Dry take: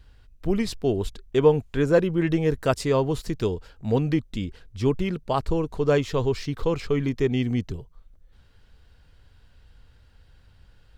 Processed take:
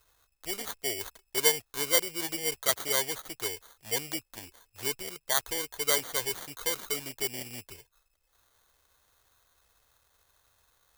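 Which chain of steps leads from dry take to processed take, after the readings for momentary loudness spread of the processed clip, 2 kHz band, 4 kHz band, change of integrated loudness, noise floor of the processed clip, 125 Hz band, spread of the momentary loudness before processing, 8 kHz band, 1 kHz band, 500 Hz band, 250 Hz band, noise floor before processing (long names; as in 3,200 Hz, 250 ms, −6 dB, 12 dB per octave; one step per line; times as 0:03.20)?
15 LU, +0.5 dB, +6.0 dB, −5.0 dB, −75 dBFS, −23.5 dB, 8 LU, +13.5 dB, −7.5 dB, −13.0 dB, −19.5 dB, −56 dBFS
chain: parametric band 200 Hz −13.5 dB 0.96 octaves
decimation without filtering 17×
spectral tilt +4 dB per octave
level −6 dB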